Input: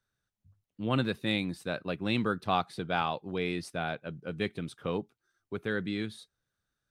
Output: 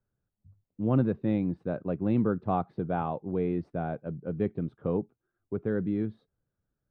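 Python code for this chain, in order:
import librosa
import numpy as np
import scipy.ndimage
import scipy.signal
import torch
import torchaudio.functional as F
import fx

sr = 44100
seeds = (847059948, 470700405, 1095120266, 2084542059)

y = scipy.signal.sosfilt(scipy.signal.bessel(2, 550.0, 'lowpass', norm='mag', fs=sr, output='sos'), x)
y = y * librosa.db_to_amplitude(5.5)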